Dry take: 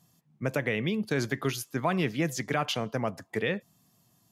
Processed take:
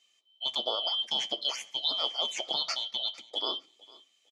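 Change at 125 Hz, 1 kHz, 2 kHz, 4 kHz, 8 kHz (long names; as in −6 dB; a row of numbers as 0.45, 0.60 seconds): below −30 dB, −4.5 dB, −13.0 dB, +12.5 dB, −2.0 dB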